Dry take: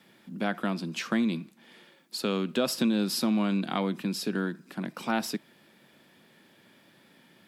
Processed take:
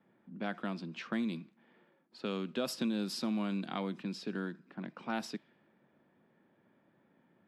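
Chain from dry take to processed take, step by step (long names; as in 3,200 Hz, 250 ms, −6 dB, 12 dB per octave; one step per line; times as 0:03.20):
low-pass that shuts in the quiet parts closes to 1,200 Hz, open at −22.5 dBFS
level −8 dB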